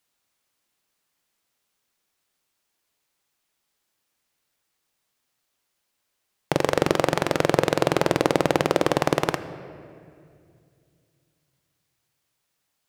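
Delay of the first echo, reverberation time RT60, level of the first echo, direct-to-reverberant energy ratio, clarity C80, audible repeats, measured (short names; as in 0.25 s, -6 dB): none, 2.3 s, none, 11.5 dB, 13.5 dB, none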